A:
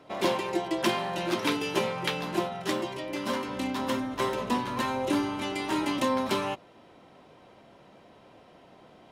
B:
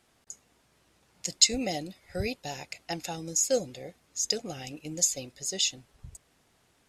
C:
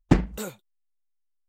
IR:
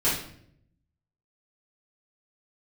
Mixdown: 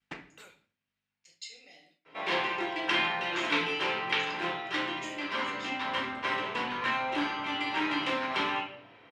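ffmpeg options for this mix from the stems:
-filter_complex "[0:a]aemphasis=mode=reproduction:type=bsi,asoftclip=type=hard:threshold=-19dB,adelay=2050,volume=1.5dB,asplit=2[link_01][link_02];[link_02]volume=-7dB[link_03];[1:a]acompressor=mode=upward:threshold=-49dB:ratio=2.5,volume=-20dB,asplit=3[link_04][link_05][link_06];[link_05]volume=-8dB[link_07];[2:a]aeval=exprs='val(0)+0.00708*(sin(2*PI*50*n/s)+sin(2*PI*2*50*n/s)/2+sin(2*PI*3*50*n/s)/3+sin(2*PI*4*50*n/s)/4+sin(2*PI*5*50*n/s)/5)':channel_layout=same,volume=-8dB,asplit=2[link_08][link_09];[link_09]volume=-19dB[link_10];[link_06]apad=whole_len=65634[link_11];[link_08][link_11]sidechaincompress=threshold=-54dB:ratio=8:attack=29:release=998[link_12];[3:a]atrim=start_sample=2205[link_13];[link_03][link_07][link_10]amix=inputs=3:normalize=0[link_14];[link_14][link_13]afir=irnorm=-1:irlink=0[link_15];[link_01][link_04][link_12][link_15]amix=inputs=4:normalize=0,agate=range=-33dB:threshold=-47dB:ratio=3:detection=peak,bandpass=frequency=2300:width_type=q:width=1.3:csg=0"

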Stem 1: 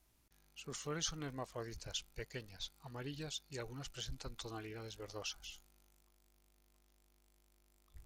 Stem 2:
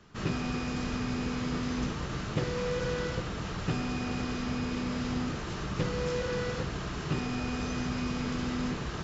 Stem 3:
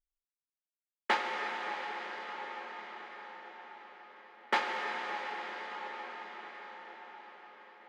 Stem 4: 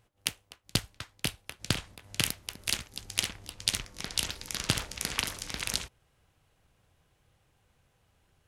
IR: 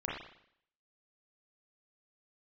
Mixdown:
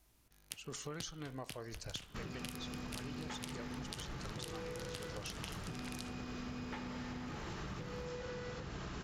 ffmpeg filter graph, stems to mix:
-filter_complex "[0:a]volume=2.5dB,asplit=2[link_01][link_02];[link_02]volume=-17.5dB[link_03];[1:a]alimiter=level_in=2.5dB:limit=-24dB:level=0:latency=1:release=383,volume=-2.5dB,adelay=2000,volume=-2dB[link_04];[2:a]adelay=2200,volume=-11.5dB[link_05];[3:a]adelay=250,volume=-10.5dB[link_06];[4:a]atrim=start_sample=2205[link_07];[link_03][link_07]afir=irnorm=-1:irlink=0[link_08];[link_01][link_04][link_05][link_06][link_08]amix=inputs=5:normalize=0,acompressor=threshold=-41dB:ratio=6"

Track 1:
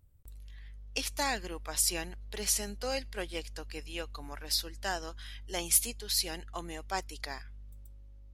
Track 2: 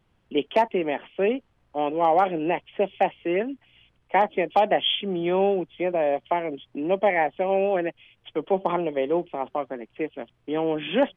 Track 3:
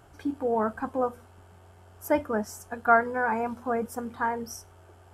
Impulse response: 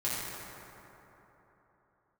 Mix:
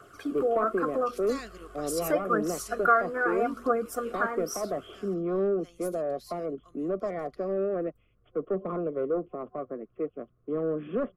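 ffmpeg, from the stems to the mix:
-filter_complex "[0:a]adynamicequalizer=threshold=0.002:dfrequency=200:dqfactor=1.6:tfrequency=200:tqfactor=1.6:attack=5:release=100:ratio=0.375:range=2.5:mode=boostabove:tftype=bell,aeval=exprs='val(0)+0.000794*(sin(2*PI*50*n/s)+sin(2*PI*2*50*n/s)/2+sin(2*PI*3*50*n/s)/3+sin(2*PI*4*50*n/s)/4+sin(2*PI*5*50*n/s)/5)':channel_layout=same,adelay=100,volume=-9dB,afade=type=out:start_time=3.93:duration=0.31:silence=0.223872[link_01];[1:a]asoftclip=type=tanh:threshold=-20dB,lowpass=1000,lowshelf=frequency=340:gain=5.5,volume=-6dB[link_02];[2:a]highpass=250,aphaser=in_gain=1:out_gain=1:delay=3.4:decay=0.49:speed=0.81:type=triangular,volume=2dB,asplit=2[link_03][link_04];[link_04]apad=whole_len=372072[link_05];[link_01][link_05]sidechaincompress=threshold=-27dB:ratio=10:attack=39:release=691[link_06];[link_06][link_03]amix=inputs=2:normalize=0,adynamicequalizer=threshold=0.00501:dfrequency=320:dqfactor=3.8:tfrequency=320:tqfactor=3.8:attack=5:release=100:ratio=0.375:range=3:mode=boostabove:tftype=bell,acompressor=threshold=-29dB:ratio=2,volume=0dB[link_07];[link_02][link_07]amix=inputs=2:normalize=0,superequalizer=7b=1.58:9b=0.251:10b=2.51"

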